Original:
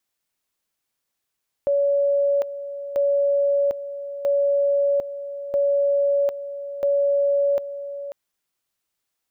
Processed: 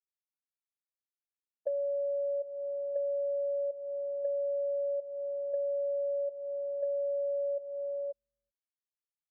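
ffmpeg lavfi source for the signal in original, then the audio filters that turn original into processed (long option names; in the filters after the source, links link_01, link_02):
-f lavfi -i "aevalsrc='pow(10,(-16.5-12.5*gte(mod(t,1.29),0.75))/20)*sin(2*PI*565*t)':duration=6.45:sample_rate=44100"
-filter_complex "[0:a]afftfilt=real='re*gte(hypot(re,im),0.282)':imag='im*gte(hypot(re,im),0.282)':win_size=1024:overlap=0.75,acrossover=split=130[link_01][link_02];[link_01]aecho=1:1:383:0.447[link_03];[link_02]acompressor=threshold=-32dB:ratio=6[link_04];[link_03][link_04]amix=inputs=2:normalize=0"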